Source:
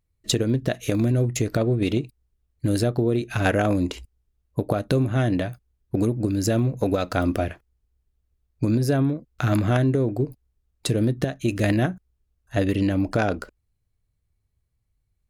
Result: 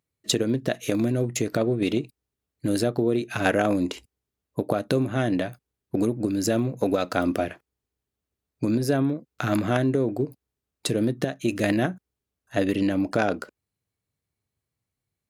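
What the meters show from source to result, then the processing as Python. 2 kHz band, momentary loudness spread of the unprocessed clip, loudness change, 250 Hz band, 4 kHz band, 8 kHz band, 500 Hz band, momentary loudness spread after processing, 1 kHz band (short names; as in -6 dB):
0.0 dB, 9 LU, -1.5 dB, -1.0 dB, 0.0 dB, 0.0 dB, 0.0 dB, 9 LU, 0.0 dB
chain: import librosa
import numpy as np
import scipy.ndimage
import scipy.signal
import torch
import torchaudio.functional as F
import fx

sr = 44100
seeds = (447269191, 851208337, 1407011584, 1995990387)

y = scipy.signal.sosfilt(scipy.signal.butter(2, 170.0, 'highpass', fs=sr, output='sos'), x)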